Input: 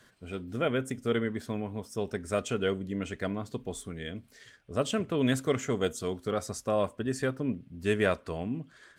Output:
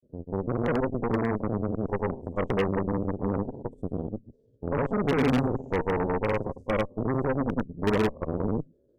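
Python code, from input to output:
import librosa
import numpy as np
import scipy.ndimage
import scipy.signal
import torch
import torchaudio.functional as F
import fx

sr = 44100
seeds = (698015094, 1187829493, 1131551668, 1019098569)

y = fx.spec_steps(x, sr, hold_ms=50)
y = scipy.signal.sosfilt(scipy.signal.ellip(4, 1.0, 40, 550.0, 'lowpass', fs=sr, output='sos'), y)
y = fx.granulator(y, sr, seeds[0], grain_ms=100.0, per_s=20.0, spray_ms=100.0, spread_st=0)
y = fx.cheby_harmonics(y, sr, harmonics=(6,), levels_db=(-10,), full_scale_db=-23.0)
y = y * librosa.db_to_amplitude(5.5)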